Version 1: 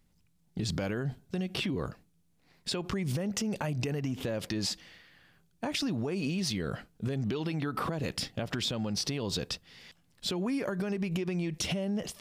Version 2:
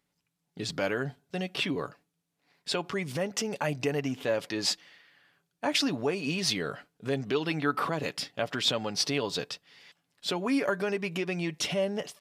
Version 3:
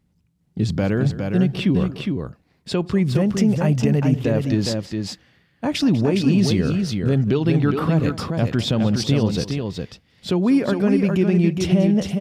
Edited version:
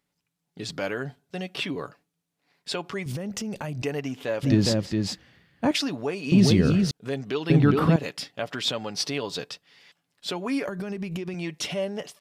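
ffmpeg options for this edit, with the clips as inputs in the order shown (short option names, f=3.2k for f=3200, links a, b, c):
-filter_complex "[0:a]asplit=2[a][b];[2:a]asplit=3[c][d][e];[1:a]asplit=6[f][g][h][i][j][k];[f]atrim=end=3.062[l];[a]atrim=start=3.058:end=3.822[m];[g]atrim=start=3.818:end=4.432[n];[c]atrim=start=4.428:end=5.712[o];[h]atrim=start=5.708:end=6.322[p];[d]atrim=start=6.318:end=6.912[q];[i]atrim=start=6.908:end=7.502[r];[e]atrim=start=7.498:end=7.962[s];[j]atrim=start=7.958:end=10.682[t];[b]atrim=start=10.678:end=11.342[u];[k]atrim=start=11.338[v];[l][m]acrossfade=d=0.004:c1=hsin:c2=hsin[w];[w][n]acrossfade=d=0.004:c1=hsin:c2=hsin[x];[x][o]acrossfade=d=0.004:c1=hsin:c2=hsin[y];[y][p]acrossfade=d=0.004:c1=hsin:c2=hsin[z];[z][q]acrossfade=d=0.004:c1=hsin:c2=hsin[aa];[aa][r]acrossfade=d=0.004:c1=hsin:c2=hsin[ab];[ab][s]acrossfade=d=0.004:c1=hsin:c2=hsin[ac];[ac][t]acrossfade=d=0.004:c1=hsin:c2=hsin[ad];[ad][u]acrossfade=d=0.004:c1=hsin:c2=hsin[ae];[ae][v]acrossfade=d=0.004:c1=hsin:c2=hsin"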